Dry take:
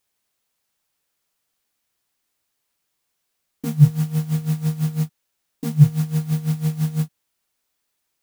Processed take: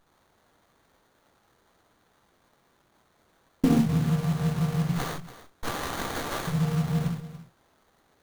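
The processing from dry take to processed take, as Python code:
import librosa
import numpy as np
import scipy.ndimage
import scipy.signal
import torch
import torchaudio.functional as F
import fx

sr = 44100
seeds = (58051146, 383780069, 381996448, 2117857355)

y = fx.highpass(x, sr, hz=1300.0, slope=24, at=(4.88, 6.47), fade=0.02)
y = fx.over_compress(y, sr, threshold_db=-28.0, ratio=-1.0)
y = fx.doubler(y, sr, ms=23.0, db=-3.0)
y = y + 10.0 ** (-15.0 / 20.0) * np.pad(y, (int(286 * sr / 1000.0), 0))[:len(y)]
y = fx.rev_gated(y, sr, seeds[0], gate_ms=150, shape='flat', drr_db=-2.0)
y = fx.running_max(y, sr, window=17)
y = y * 10.0 ** (3.0 / 20.0)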